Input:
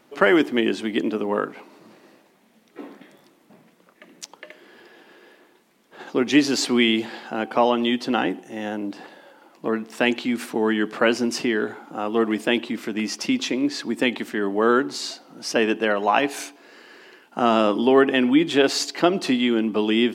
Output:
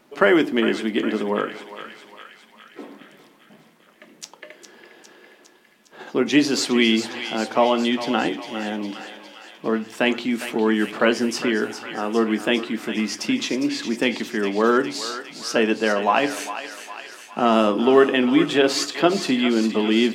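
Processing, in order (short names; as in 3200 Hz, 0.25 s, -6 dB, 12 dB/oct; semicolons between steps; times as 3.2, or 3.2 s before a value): thinning echo 0.407 s, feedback 68%, high-pass 940 Hz, level -9 dB; on a send at -10 dB: reverb, pre-delay 3 ms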